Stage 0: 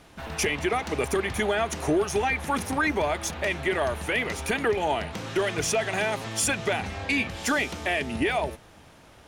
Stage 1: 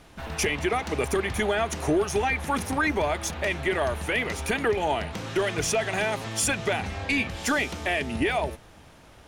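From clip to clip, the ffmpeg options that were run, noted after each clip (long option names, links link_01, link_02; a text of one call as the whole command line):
ffmpeg -i in.wav -af "lowshelf=frequency=60:gain=6.5" out.wav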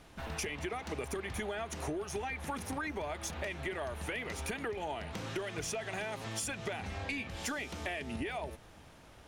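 ffmpeg -i in.wav -af "acompressor=threshold=-30dB:ratio=6,volume=-5dB" out.wav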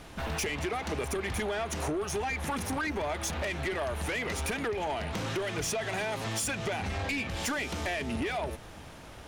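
ffmpeg -i in.wav -af "asoftclip=type=tanh:threshold=-36dB,volume=9dB" out.wav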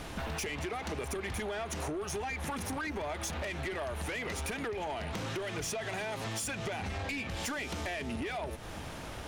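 ffmpeg -i in.wav -af "acompressor=threshold=-42dB:ratio=4,volume=5.5dB" out.wav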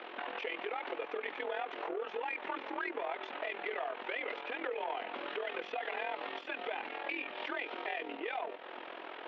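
ffmpeg -i in.wav -af "highpass=frequency=290:width_type=q:width=0.5412,highpass=frequency=290:width_type=q:width=1.307,lowpass=frequency=3300:width_type=q:width=0.5176,lowpass=frequency=3300:width_type=q:width=0.7071,lowpass=frequency=3300:width_type=q:width=1.932,afreqshift=52,tremolo=f=42:d=0.71,volume=2.5dB" out.wav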